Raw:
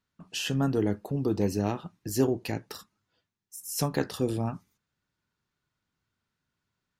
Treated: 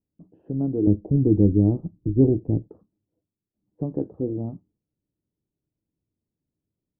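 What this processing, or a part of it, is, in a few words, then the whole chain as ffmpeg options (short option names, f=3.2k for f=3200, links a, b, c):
under water: -filter_complex "[0:a]lowpass=f=570:w=0.5412,lowpass=f=570:w=1.3066,equalizer=f=310:t=o:w=0.23:g=9,asettb=1/sr,asplit=3[a][b][c];[a]atrim=end=0.874[d];[b]atrim=start=0.87:end=2.68,asetpts=PTS-STARTPTS,afade=t=in:d=0.004:c=qsin,afade=t=out:st=1.806:d=0.004:c=qsin,aemphasis=mode=reproduction:type=riaa[e];[c]atrim=start=2.676[f];[d][e]acrossfade=d=0.004:c1=hsin:c2=qsin[g];[g][f]acrossfade=d=0.004:c1=qsin:c2=hsin"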